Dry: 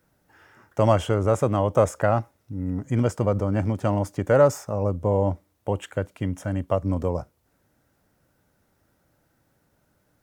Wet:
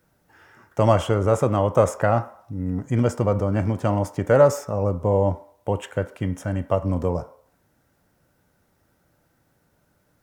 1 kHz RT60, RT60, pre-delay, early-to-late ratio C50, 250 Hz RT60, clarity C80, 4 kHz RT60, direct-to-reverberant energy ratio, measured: 0.60 s, 0.60 s, 3 ms, 15.0 dB, 0.45 s, 18.0 dB, 0.60 s, 10.0 dB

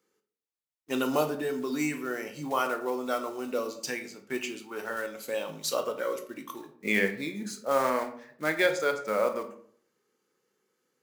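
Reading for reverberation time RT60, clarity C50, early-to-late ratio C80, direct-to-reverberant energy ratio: 0.55 s, 11.5 dB, 14.0 dB, 6.0 dB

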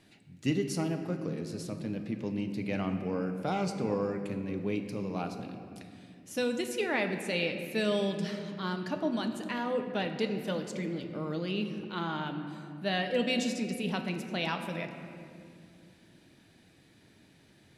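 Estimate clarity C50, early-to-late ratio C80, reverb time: 7.5 dB, 8.0 dB, 2.5 s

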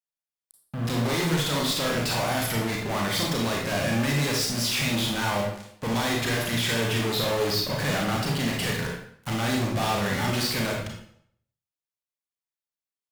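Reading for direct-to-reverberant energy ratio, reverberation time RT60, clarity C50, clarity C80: -1.5 dB, 0.65 s, 2.5 dB, 6.0 dB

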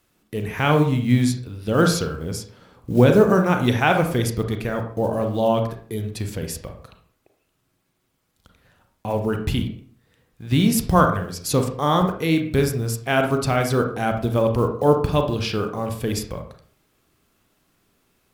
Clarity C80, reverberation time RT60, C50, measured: 12.0 dB, 0.50 s, 7.5 dB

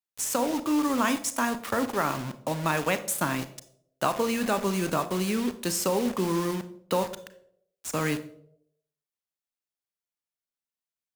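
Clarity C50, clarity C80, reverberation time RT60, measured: 14.0 dB, 17.5 dB, 0.75 s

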